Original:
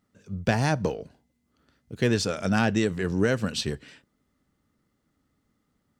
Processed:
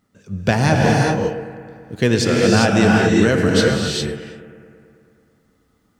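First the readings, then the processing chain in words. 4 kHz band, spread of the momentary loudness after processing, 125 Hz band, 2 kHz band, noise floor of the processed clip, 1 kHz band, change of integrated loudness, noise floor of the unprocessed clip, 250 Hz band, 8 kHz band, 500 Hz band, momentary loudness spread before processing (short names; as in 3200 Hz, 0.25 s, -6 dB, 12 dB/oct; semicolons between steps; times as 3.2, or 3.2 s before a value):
+10.5 dB, 14 LU, +10.0 dB, +10.5 dB, -62 dBFS, +11.0 dB, +9.5 dB, -75 dBFS, +10.5 dB, +10.5 dB, +11.0 dB, 9 LU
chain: analogue delay 0.109 s, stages 2048, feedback 74%, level -15.5 dB; non-linear reverb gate 0.43 s rising, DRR -1.5 dB; gain +6.5 dB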